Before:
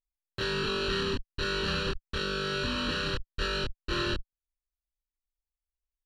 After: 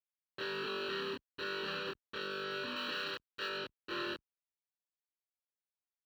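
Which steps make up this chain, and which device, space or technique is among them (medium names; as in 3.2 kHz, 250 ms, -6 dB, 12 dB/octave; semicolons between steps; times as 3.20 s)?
early digital voice recorder (band-pass 290–3700 Hz; block-companded coder 7-bit); 2.76–3.49 s: tilt EQ +1.5 dB/octave; trim -6.5 dB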